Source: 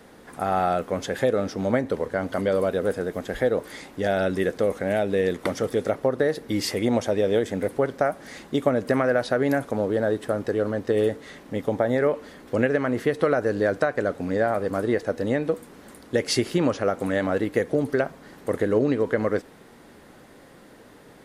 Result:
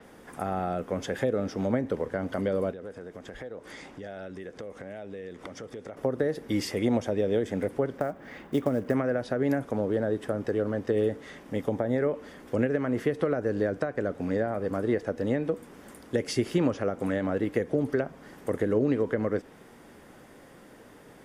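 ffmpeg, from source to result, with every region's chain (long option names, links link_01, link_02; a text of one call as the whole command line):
ffmpeg -i in.wav -filter_complex "[0:a]asettb=1/sr,asplit=3[link_01][link_02][link_03];[link_01]atrim=end=2.714[link_04];[link_02]atrim=start=2.71:end=5.97,asetpts=PTS-STARTPTS,afade=type=in:duration=0.004:curve=qsin,afade=type=out:start_time=3.256:duration=0.004:curve=qsin,lowpass=7500,acompressor=threshold=-37dB:ratio=4:attack=3.2:release=140:knee=1:detection=peak[link_05];[link_03]atrim=start=5.966[link_06];[link_04][link_05]acrossfade=duration=0.004:curve1=hsin:curve2=qsin[link_07];[link_07][link_06]acrossfade=duration=0.004:curve1=qsin:curve2=hsin,asettb=1/sr,asplit=3[link_08][link_09][link_10];[link_08]atrim=end=7.984[link_11];[link_09]atrim=start=7.98:end=8.94,asetpts=PTS-STARTPTS,afade=type=in:duration=0.004:curve=qsin,afade=type=out:start_time=0.956:duration=0.004:curve=qsin,lowpass=2800,acrusher=bits=6:mode=log:mix=0:aa=0.000001[link_12];[link_10]atrim=start=8.936[link_13];[link_11][link_12]acrossfade=duration=0.004:curve1=hsin:curve2=qsin[link_14];[link_14][link_13]acrossfade=duration=0.004:curve1=qsin:curve2=hsin,equalizer=frequency=4100:width=7.4:gain=-8.5,acrossover=split=440[link_15][link_16];[link_16]acompressor=threshold=-29dB:ratio=6[link_17];[link_15][link_17]amix=inputs=2:normalize=0,adynamicequalizer=threshold=0.002:dfrequency=6400:dqfactor=0.7:tfrequency=6400:tqfactor=0.7:attack=5:release=100:ratio=0.375:range=2.5:mode=cutabove:tftype=highshelf,volume=-2dB" out.wav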